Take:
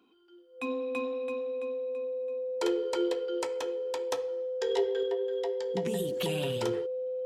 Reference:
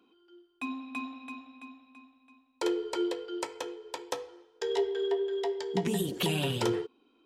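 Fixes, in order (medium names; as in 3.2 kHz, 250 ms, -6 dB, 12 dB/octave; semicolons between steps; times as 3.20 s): band-stop 510 Hz, Q 30; trim 0 dB, from 5.03 s +4 dB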